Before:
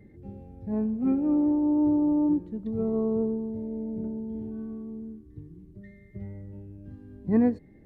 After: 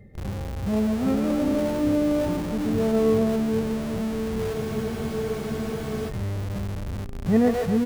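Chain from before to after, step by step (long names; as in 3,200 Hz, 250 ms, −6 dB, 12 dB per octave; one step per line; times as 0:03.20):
comb filter 1.6 ms, depth 69%
echo with a time of its own for lows and highs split 450 Hz, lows 395 ms, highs 137 ms, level −3.5 dB
in parallel at −6 dB: comparator with hysteresis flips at −42 dBFS
on the sum: frozen spectrum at 0:04.56, 1.53 s
level +3 dB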